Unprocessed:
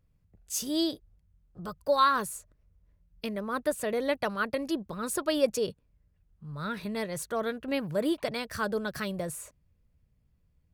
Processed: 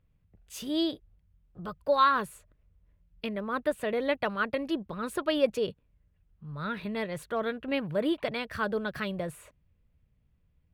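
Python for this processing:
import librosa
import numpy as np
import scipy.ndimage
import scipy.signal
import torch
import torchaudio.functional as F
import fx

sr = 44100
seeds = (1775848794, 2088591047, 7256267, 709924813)

y = fx.high_shelf_res(x, sr, hz=4300.0, db=-10.0, q=1.5)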